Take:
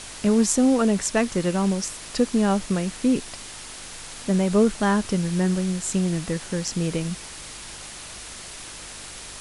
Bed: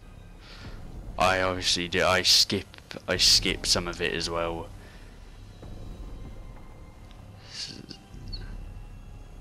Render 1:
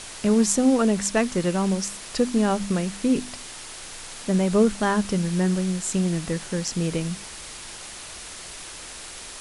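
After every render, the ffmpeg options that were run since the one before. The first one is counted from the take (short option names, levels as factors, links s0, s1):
-af "bandreject=f=50:t=h:w=4,bandreject=f=100:t=h:w=4,bandreject=f=150:t=h:w=4,bandreject=f=200:t=h:w=4,bandreject=f=250:t=h:w=4,bandreject=f=300:t=h:w=4"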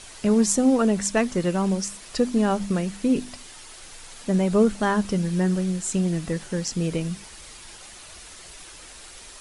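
-af "afftdn=nr=7:nf=-39"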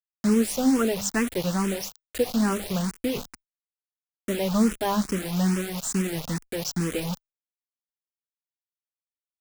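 -filter_complex "[0:a]acrusher=bits=4:mix=0:aa=0.000001,asplit=2[s0][s1];[s1]afreqshift=2.3[s2];[s0][s2]amix=inputs=2:normalize=1"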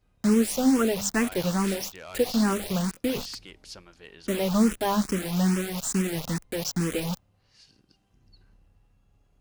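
-filter_complex "[1:a]volume=0.1[s0];[0:a][s0]amix=inputs=2:normalize=0"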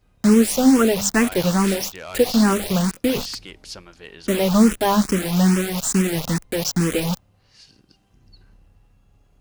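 -af "volume=2.24"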